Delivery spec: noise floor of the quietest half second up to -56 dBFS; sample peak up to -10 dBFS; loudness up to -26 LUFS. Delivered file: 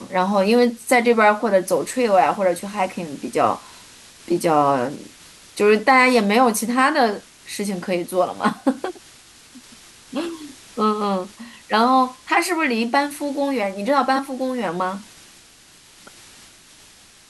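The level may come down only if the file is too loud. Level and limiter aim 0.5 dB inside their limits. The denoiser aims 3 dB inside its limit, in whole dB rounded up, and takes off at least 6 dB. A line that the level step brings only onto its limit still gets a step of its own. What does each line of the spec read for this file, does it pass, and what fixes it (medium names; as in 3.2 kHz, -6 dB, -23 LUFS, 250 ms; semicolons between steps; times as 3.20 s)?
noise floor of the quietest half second -49 dBFS: fail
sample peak -4.0 dBFS: fail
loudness -19.5 LUFS: fail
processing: noise reduction 6 dB, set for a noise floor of -49 dBFS; trim -7 dB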